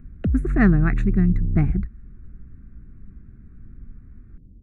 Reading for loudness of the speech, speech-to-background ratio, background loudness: -22.5 LUFS, 3.5 dB, -26.0 LUFS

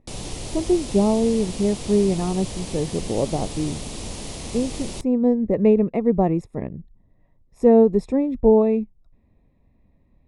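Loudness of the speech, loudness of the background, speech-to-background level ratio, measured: -21.0 LUFS, -33.0 LUFS, 12.0 dB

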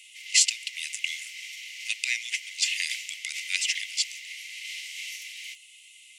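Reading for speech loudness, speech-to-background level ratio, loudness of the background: -27.5 LUFS, 10.0 dB, -37.5 LUFS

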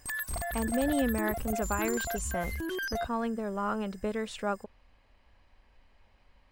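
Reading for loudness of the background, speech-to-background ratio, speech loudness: -35.0 LUFS, 1.5 dB, -33.5 LUFS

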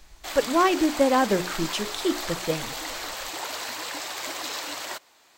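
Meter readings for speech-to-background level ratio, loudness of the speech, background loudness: 7.0 dB, -25.0 LUFS, -32.0 LUFS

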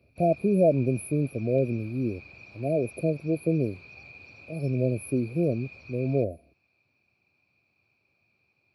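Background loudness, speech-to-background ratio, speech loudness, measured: -47.0 LUFS, 19.5 dB, -27.5 LUFS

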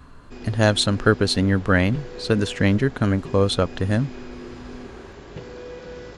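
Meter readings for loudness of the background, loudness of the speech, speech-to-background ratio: -39.0 LUFS, -21.0 LUFS, 18.0 dB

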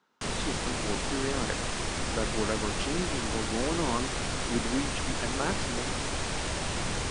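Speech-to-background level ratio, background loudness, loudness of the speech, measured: -3.5 dB, -32.0 LUFS, -35.5 LUFS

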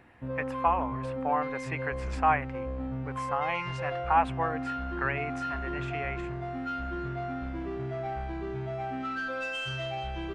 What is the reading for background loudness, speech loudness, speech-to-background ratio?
-35.0 LUFS, -32.0 LUFS, 3.0 dB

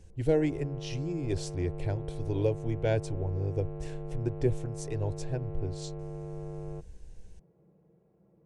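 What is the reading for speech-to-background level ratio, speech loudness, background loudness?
8.0 dB, -33.0 LUFS, -41.0 LUFS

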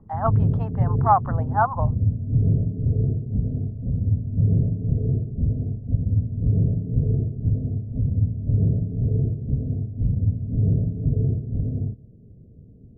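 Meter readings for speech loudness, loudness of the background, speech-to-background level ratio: -24.0 LUFS, -24.0 LUFS, 0.0 dB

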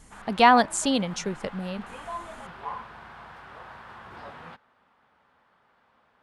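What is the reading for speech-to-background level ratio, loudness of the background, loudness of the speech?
18.5 dB, -41.5 LUFS, -23.0 LUFS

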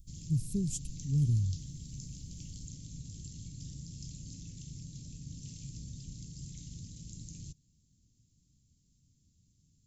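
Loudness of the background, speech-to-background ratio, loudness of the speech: -46.0 LUFS, 13.0 dB, -33.0 LUFS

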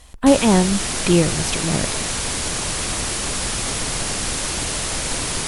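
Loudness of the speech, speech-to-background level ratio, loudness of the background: -19.0 LUFS, 3.5 dB, -22.5 LUFS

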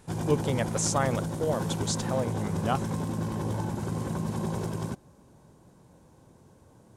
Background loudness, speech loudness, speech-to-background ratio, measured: -32.0 LUFS, -30.5 LUFS, 1.5 dB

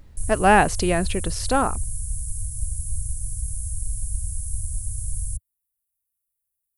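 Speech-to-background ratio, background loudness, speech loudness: 9.0 dB, -30.5 LUFS, -21.5 LUFS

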